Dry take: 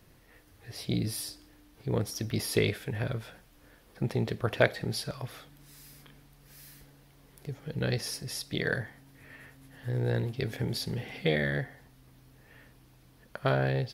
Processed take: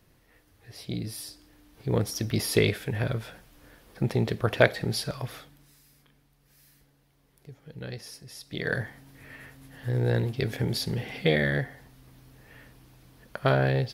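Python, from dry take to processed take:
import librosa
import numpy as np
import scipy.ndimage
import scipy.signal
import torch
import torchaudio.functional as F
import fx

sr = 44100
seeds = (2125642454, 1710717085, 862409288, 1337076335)

y = fx.gain(x, sr, db=fx.line((1.15, -3.0), (1.96, 4.0), (5.34, 4.0), (5.83, -8.0), (8.35, -8.0), (8.81, 4.0)))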